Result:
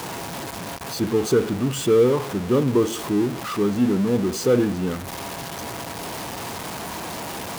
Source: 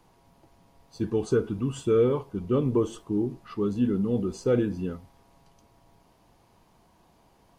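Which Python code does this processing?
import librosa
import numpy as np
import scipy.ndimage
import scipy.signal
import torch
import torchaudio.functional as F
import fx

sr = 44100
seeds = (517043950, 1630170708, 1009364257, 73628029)

y = x + 0.5 * 10.0 ** (-29.5 / 20.0) * np.sign(x)
y = scipy.signal.sosfilt(scipy.signal.butter(2, 58.0, 'highpass', fs=sr, output='sos'), y)
y = fx.low_shelf(y, sr, hz=80.0, db=-10.5)
y = y * librosa.db_to_amplitude(4.5)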